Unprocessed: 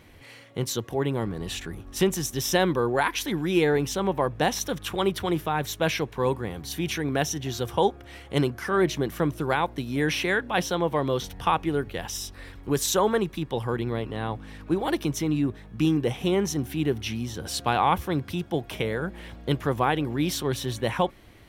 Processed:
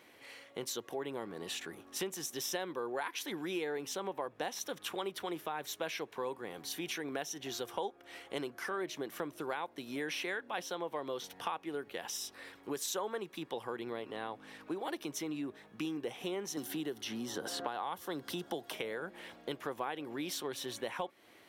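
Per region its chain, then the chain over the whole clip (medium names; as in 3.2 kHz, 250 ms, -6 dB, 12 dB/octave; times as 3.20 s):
16.57–18.73 s: peaking EQ 2.4 kHz -11.5 dB 0.28 oct + three bands compressed up and down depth 100%
whole clip: high-pass 340 Hz 12 dB/octave; compression 3:1, threshold -33 dBFS; trim -4 dB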